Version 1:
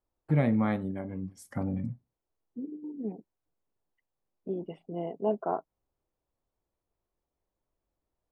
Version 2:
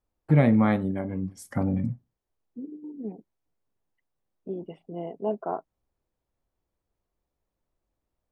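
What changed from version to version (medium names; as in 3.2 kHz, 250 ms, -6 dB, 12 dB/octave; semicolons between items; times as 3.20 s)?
first voice +6.0 dB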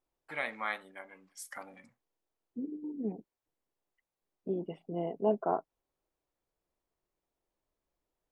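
first voice: add high-pass 1.4 kHz 12 dB/octave; master: add peaking EQ 81 Hz -6 dB 0.62 oct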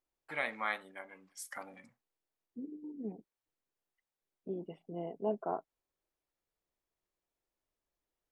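second voice -5.5 dB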